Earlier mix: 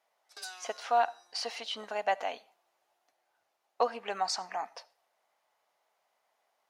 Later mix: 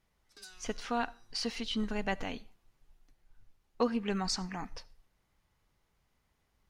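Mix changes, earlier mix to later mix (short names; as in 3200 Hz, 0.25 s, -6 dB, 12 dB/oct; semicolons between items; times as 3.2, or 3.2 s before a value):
background -7.5 dB; master: remove resonant high-pass 670 Hz, resonance Q 3.4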